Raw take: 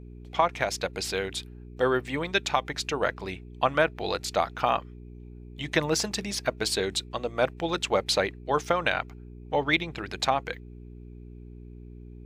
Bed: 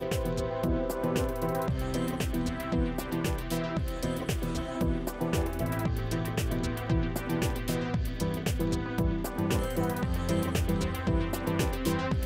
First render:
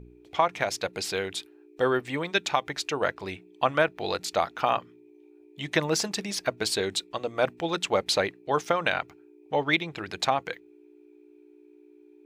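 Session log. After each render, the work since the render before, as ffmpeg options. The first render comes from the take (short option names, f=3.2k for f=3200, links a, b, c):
-af "bandreject=f=60:t=h:w=4,bandreject=f=120:t=h:w=4,bandreject=f=180:t=h:w=4,bandreject=f=240:t=h:w=4"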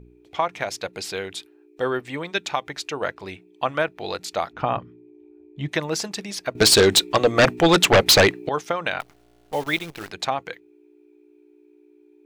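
-filter_complex "[0:a]asplit=3[a][b][c];[a]afade=t=out:st=4.52:d=0.02[d];[b]aemphasis=mode=reproduction:type=riaa,afade=t=in:st=4.52:d=0.02,afade=t=out:st=5.67:d=0.02[e];[c]afade=t=in:st=5.67:d=0.02[f];[d][e][f]amix=inputs=3:normalize=0,asettb=1/sr,asplit=3[g][h][i];[g]atrim=end=6.554[j];[h]atrim=start=6.55:end=8.49,asetpts=PTS-STARTPTS,afade=t=in:d=0.004:c=qsin,afade=t=out:st=1.936:d=0.004:c=qsin,aeval=exprs='0.355*sin(PI/2*3.98*val(0)/0.355)':c=same[k];[i]atrim=start=8.486[l];[j][k]acrossfade=d=0.004:c1=hsin:c2=qsin[m];[m][l]acrossfade=d=0.004:c1=qsin:c2=hsin,asettb=1/sr,asplit=3[n][o][p];[n]atrim=end=9.004[q];[o]atrim=start=9:end=10.11,asetpts=PTS-STARTPTS,afade=t=in:d=0.004:c=qsin,afade=t=out:st=1.106:d=0.004:c=qsin,acrusher=bits=7:dc=4:mix=0:aa=0.000001[r];[p]atrim=start=10.106[s];[q][r]acrossfade=d=0.004:c1=hsin:c2=qsin[t];[t][s]acrossfade=d=0.004:c1=qsin:c2=hsin"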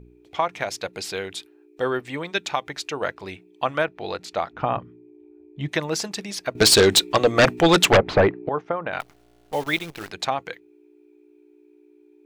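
-filter_complex "[0:a]asettb=1/sr,asplit=3[a][b][c];[a]atrim=end=3.854[d];[b]atrim=start=3.85:end=5.6,asetpts=PTS-STARTPTS,afade=t=in:d=0.004:c=qsin,afade=t=out:st=1.746:d=0.004:c=qsin,lowpass=f=3.2k:p=1[e];[c]atrim=start=5.596[f];[d][e]acrossfade=d=0.004:c1=hsin:c2=qsin[g];[g][f]acrossfade=d=0.004:c1=qsin:c2=hsin,asettb=1/sr,asplit=3[h][i][j];[h]atrim=end=7.974[k];[i]atrim=start=7.97:end=8.93,asetpts=PTS-STARTPTS,afade=t=in:d=0.004:c=qsin,afade=t=out:st=0.956:d=0.004:c=qsin,lowpass=1.3k[l];[j]atrim=start=8.926[m];[k][l]acrossfade=d=0.004:c1=hsin:c2=qsin[n];[n][m]acrossfade=d=0.004:c1=qsin:c2=hsin"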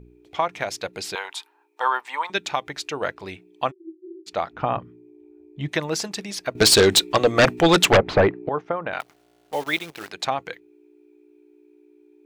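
-filter_complex "[0:a]asettb=1/sr,asplit=3[a][b][c];[a]atrim=end=1.154[d];[b]atrim=start=1.15:end=2.3,asetpts=PTS-STARTPTS,afade=t=in:d=0.004:c=qsin,afade=t=out:st=1.146:d=0.004:c=qsin,highpass=f=930:t=q:w=7.7[e];[c]atrim=start=2.296[f];[d][e]acrossfade=d=0.004:c1=hsin:c2=qsin[g];[g][f]acrossfade=d=0.004:c1=qsin:c2=hsin,asplit=3[h][i][j];[h]afade=t=out:st=3.7:d=0.02[k];[i]asuperpass=centerf=350:order=20:qfactor=5.3,afade=t=in:st=3.7:d=0.02,afade=t=out:st=4.26:d=0.02[l];[j]afade=t=in:st=4.26:d=0.02[m];[k][l][m]amix=inputs=3:normalize=0,asettb=1/sr,asplit=3[n][o][p];[n]atrim=end=8.934[q];[o]atrim=start=8.93:end=10.25,asetpts=PTS-STARTPTS,afade=t=in:d=0.004:c=qsin,afade=t=out:st=1.316:d=0.004:c=qsin,highpass=f=270:p=1[r];[p]atrim=start=10.246[s];[q][r]acrossfade=d=0.004:c1=hsin:c2=qsin[t];[t][s]acrossfade=d=0.004:c1=qsin:c2=hsin"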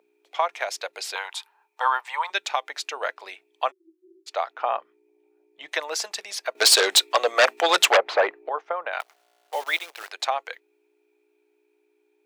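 -af "highpass=f=550:w=0.5412,highpass=f=550:w=1.3066"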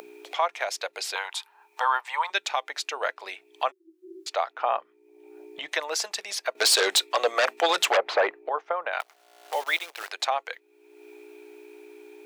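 -af "acompressor=mode=upward:threshold=-29dB:ratio=2.5,alimiter=limit=-12dB:level=0:latency=1:release=32"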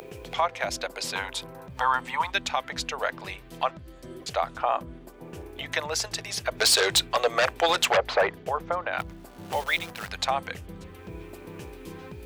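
-filter_complex "[1:a]volume=-13.5dB[a];[0:a][a]amix=inputs=2:normalize=0"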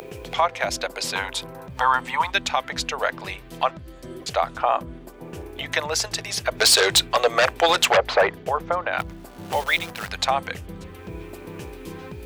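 -af "volume=4.5dB"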